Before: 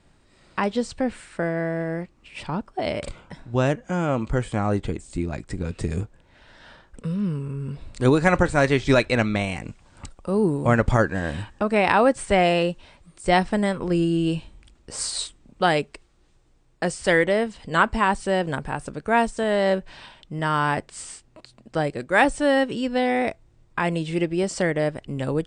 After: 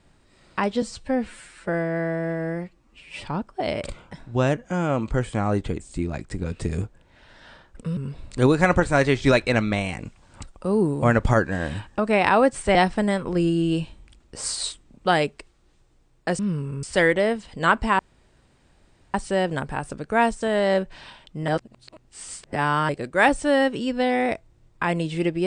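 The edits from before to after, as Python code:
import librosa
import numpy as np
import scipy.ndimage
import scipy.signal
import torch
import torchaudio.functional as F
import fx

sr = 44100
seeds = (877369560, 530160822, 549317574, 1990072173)

y = fx.edit(x, sr, fx.stretch_span(start_s=0.82, length_s=1.62, factor=1.5),
    fx.move(start_s=7.16, length_s=0.44, to_s=16.94),
    fx.cut(start_s=12.38, length_s=0.92),
    fx.insert_room_tone(at_s=18.1, length_s=1.15),
    fx.reverse_span(start_s=20.44, length_s=1.41), tone=tone)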